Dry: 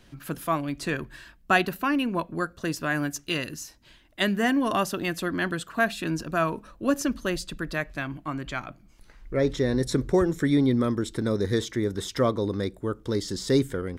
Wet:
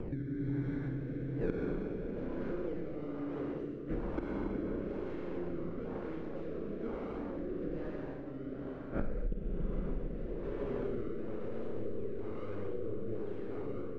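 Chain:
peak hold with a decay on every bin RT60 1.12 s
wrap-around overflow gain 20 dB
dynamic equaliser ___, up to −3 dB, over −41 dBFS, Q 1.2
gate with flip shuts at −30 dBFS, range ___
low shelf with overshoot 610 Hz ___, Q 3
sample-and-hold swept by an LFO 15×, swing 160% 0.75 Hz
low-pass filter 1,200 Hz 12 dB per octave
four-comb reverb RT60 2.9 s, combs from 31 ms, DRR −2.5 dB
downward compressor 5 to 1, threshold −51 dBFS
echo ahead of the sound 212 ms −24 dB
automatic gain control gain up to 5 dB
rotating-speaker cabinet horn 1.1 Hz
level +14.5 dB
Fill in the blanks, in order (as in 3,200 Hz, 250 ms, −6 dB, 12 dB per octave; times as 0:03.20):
140 Hz, −39 dB, +9 dB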